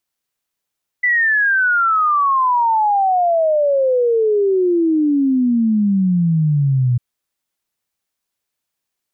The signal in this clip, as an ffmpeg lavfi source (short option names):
-f lavfi -i "aevalsrc='0.251*clip(min(t,5.95-t)/0.01,0,1)*sin(2*PI*2000*5.95/log(120/2000)*(exp(log(120/2000)*t/5.95)-1))':d=5.95:s=44100"